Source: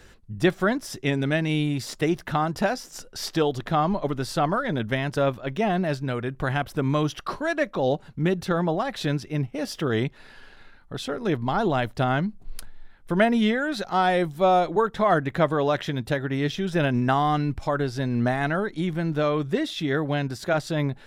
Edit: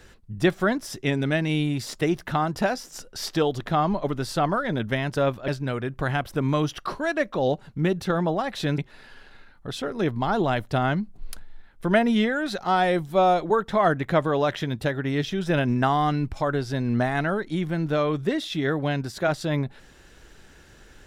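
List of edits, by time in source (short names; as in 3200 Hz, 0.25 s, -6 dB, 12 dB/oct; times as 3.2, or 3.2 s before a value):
5.48–5.89 cut
9.19–10.04 cut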